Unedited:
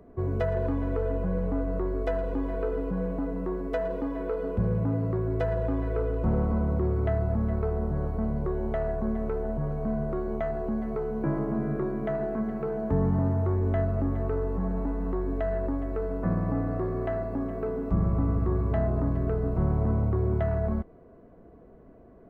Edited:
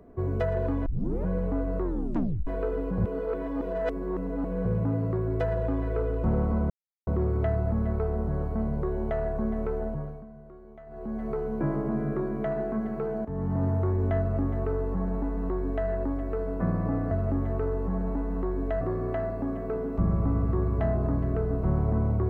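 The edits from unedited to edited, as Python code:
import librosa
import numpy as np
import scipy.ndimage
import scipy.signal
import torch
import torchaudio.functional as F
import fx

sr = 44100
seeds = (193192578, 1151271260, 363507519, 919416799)

y = fx.edit(x, sr, fx.tape_start(start_s=0.86, length_s=0.4),
    fx.tape_stop(start_s=1.83, length_s=0.64),
    fx.reverse_span(start_s=2.98, length_s=1.67),
    fx.insert_silence(at_s=6.7, length_s=0.37),
    fx.fade_down_up(start_s=9.45, length_s=1.48, db=-18.0, fade_s=0.44),
    fx.fade_in_from(start_s=12.88, length_s=0.43, floor_db=-13.5),
    fx.duplicate(start_s=13.81, length_s=1.7, to_s=16.74), tone=tone)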